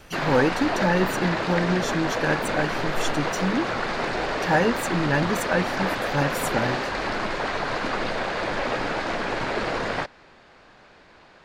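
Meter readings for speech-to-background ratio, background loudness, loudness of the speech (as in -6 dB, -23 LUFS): 0.5 dB, -26.5 LUFS, -26.0 LUFS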